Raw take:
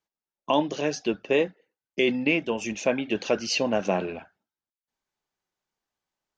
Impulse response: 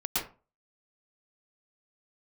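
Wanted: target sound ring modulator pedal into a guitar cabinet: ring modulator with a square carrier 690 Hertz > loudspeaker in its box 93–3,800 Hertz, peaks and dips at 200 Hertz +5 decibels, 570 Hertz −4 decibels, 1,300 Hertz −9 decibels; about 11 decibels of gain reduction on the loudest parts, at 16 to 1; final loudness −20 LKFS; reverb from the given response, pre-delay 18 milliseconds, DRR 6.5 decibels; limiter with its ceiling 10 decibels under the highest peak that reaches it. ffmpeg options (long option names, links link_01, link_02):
-filter_complex "[0:a]acompressor=threshold=-28dB:ratio=16,alimiter=limit=-23dB:level=0:latency=1,asplit=2[link_01][link_02];[1:a]atrim=start_sample=2205,adelay=18[link_03];[link_02][link_03]afir=irnorm=-1:irlink=0,volume=-14dB[link_04];[link_01][link_04]amix=inputs=2:normalize=0,aeval=exprs='val(0)*sgn(sin(2*PI*690*n/s))':channel_layout=same,highpass=93,equalizer=frequency=200:width_type=q:width=4:gain=5,equalizer=frequency=570:width_type=q:width=4:gain=-4,equalizer=frequency=1300:width_type=q:width=4:gain=-9,lowpass=frequency=3800:width=0.5412,lowpass=frequency=3800:width=1.3066,volume=17dB"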